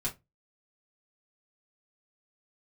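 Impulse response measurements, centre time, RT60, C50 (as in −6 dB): 13 ms, 0.20 s, 16.5 dB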